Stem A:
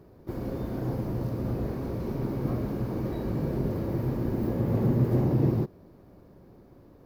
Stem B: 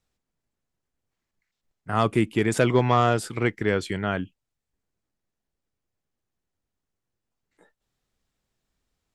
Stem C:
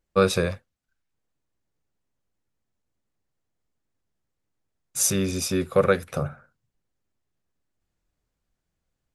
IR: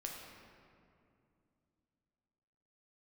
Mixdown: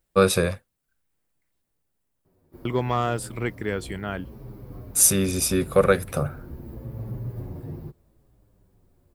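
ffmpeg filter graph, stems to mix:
-filter_complex "[0:a]asubboost=boost=4:cutoff=110,asplit=2[link_01][link_02];[link_02]adelay=7.9,afreqshift=-0.77[link_03];[link_01][link_03]amix=inputs=2:normalize=1,adelay=2250,volume=-9.5dB[link_04];[1:a]volume=-4.5dB,asplit=3[link_05][link_06][link_07];[link_05]atrim=end=1.75,asetpts=PTS-STARTPTS,afade=type=out:start_time=1.746:duration=0.004:curve=hsin[link_08];[link_06]atrim=start=1.75:end=2.65,asetpts=PTS-STARTPTS,volume=0[link_09];[link_07]atrim=start=2.65,asetpts=PTS-STARTPTS,afade=type=in:duration=0.004:curve=hsin[link_10];[link_08][link_09][link_10]concat=n=3:v=0:a=1[link_11];[2:a]volume=1.5dB[link_12];[link_04][link_11][link_12]amix=inputs=3:normalize=0,aexciter=amount=2.7:drive=4.8:freq=8500"

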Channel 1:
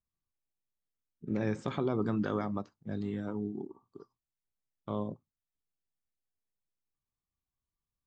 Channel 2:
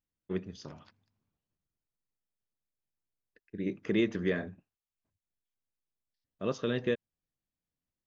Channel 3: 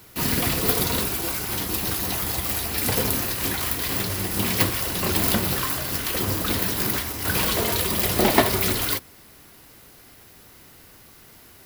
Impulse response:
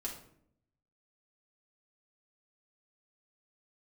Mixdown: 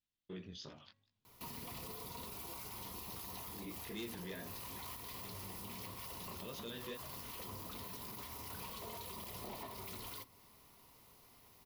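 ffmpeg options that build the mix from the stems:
-filter_complex "[1:a]equalizer=frequency=3500:width=1.3:gain=12.5,flanger=delay=17:depth=5.3:speed=2.7,volume=-3.5dB[link_01];[2:a]equalizer=frequency=315:width_type=o:width=0.33:gain=-4,equalizer=frequency=1000:width_type=o:width=0.33:gain=10,equalizer=frequency=1600:width_type=o:width=0.33:gain=-10,equalizer=frequency=8000:width_type=o:width=0.33:gain=-4,acompressor=threshold=-28dB:ratio=6,adelay=1250,volume=-15dB,asplit=2[link_02][link_03];[link_03]volume=-14.5dB[link_04];[link_01][link_02]amix=inputs=2:normalize=0,volume=27.5dB,asoftclip=hard,volume=-27.5dB,alimiter=level_in=14.5dB:limit=-24dB:level=0:latency=1:release=27,volume=-14.5dB,volume=0dB[link_05];[3:a]atrim=start_sample=2205[link_06];[link_04][link_06]afir=irnorm=-1:irlink=0[link_07];[link_05][link_07]amix=inputs=2:normalize=0,bandreject=frequency=275.2:width_type=h:width=4,bandreject=frequency=550.4:width_type=h:width=4,bandreject=frequency=825.6:width_type=h:width=4,bandreject=frequency=1100.8:width_type=h:width=4,bandreject=frequency=1376:width_type=h:width=4,bandreject=frequency=1651.2:width_type=h:width=4,bandreject=frequency=1926.4:width_type=h:width=4"

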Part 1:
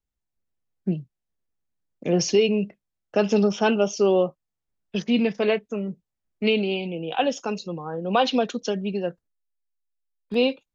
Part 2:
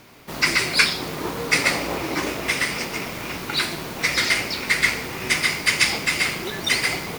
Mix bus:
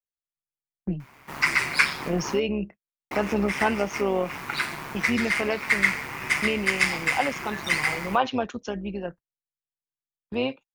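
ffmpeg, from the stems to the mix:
ffmpeg -i stem1.wav -i stem2.wav -filter_complex "[0:a]agate=range=-21dB:threshold=-38dB:ratio=16:detection=peak,volume=-3dB,asplit=2[link_01][link_02];[1:a]equalizer=frequency=3000:width=0.33:gain=4,adelay=1000,volume=-7dB,asplit=3[link_03][link_04][link_05];[link_03]atrim=end=2.4,asetpts=PTS-STARTPTS,afade=type=out:start_time=2.396:duration=0.004:curve=hsin[link_06];[link_04]atrim=start=2.4:end=3.11,asetpts=PTS-STARTPTS,volume=0[link_07];[link_05]atrim=start=3.11,asetpts=PTS-STARTPTS,afade=type=in:duration=0.004:curve=hsin[link_08];[link_06][link_07][link_08]concat=n=3:v=0:a=1[link_09];[link_02]apad=whole_len=361039[link_10];[link_09][link_10]sidechaincompress=threshold=-27dB:ratio=8:attack=28:release=169[link_11];[link_01][link_11]amix=inputs=2:normalize=0,equalizer=frequency=125:width_type=o:width=1:gain=4,equalizer=frequency=500:width_type=o:width=1:gain=-3,equalizer=frequency=1000:width_type=o:width=1:gain=7,equalizer=frequency=2000:width_type=o:width=1:gain=5,equalizer=frequency=4000:width_type=o:width=1:gain=-7,tremolo=f=140:d=0.519" out.wav

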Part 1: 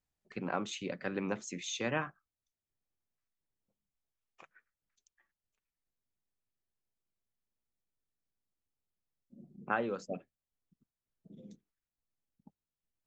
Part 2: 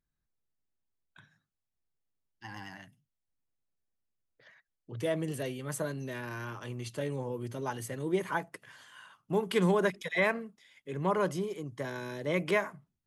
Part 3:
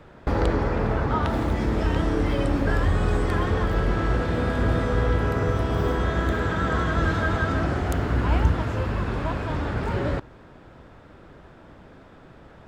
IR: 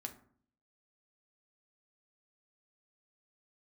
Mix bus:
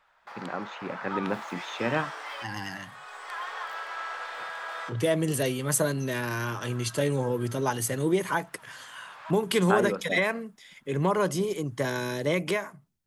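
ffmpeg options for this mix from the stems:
-filter_complex "[0:a]lowpass=2600,volume=-1dB[link_01];[1:a]alimiter=limit=-23dB:level=0:latency=1:release=366,adynamicequalizer=threshold=0.00224:dfrequency=3700:dqfactor=0.7:tfrequency=3700:tqfactor=0.7:attack=5:release=100:ratio=0.375:range=3:mode=boostabove:tftype=highshelf,volume=1dB,asplit=2[link_02][link_03];[2:a]highpass=frequency=820:width=0.5412,highpass=frequency=820:width=1.3066,volume=-10.5dB[link_04];[link_03]apad=whole_len=559136[link_05];[link_04][link_05]sidechaincompress=threshold=-52dB:ratio=6:attack=16:release=769[link_06];[link_01][link_02][link_06]amix=inputs=3:normalize=0,dynaudnorm=framelen=400:gausssize=5:maxgain=7.5dB"

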